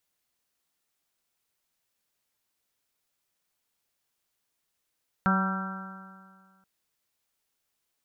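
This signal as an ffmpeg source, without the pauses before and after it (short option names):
-f lavfi -i "aevalsrc='0.0794*pow(10,-3*t/1.9)*sin(2*PI*189.1*t)+0.0106*pow(10,-3*t/1.9)*sin(2*PI*378.83*t)+0.015*pow(10,-3*t/1.9)*sin(2*PI*569.8*t)+0.0251*pow(10,-3*t/1.9)*sin(2*PI*762.62*t)+0.0266*pow(10,-3*t/1.9)*sin(2*PI*957.91*t)+0.02*pow(10,-3*t/1.9)*sin(2*PI*1156.24*t)+0.0631*pow(10,-3*t/1.9)*sin(2*PI*1358.19*t)+0.0316*pow(10,-3*t/1.9)*sin(2*PI*1564.32*t)':d=1.38:s=44100"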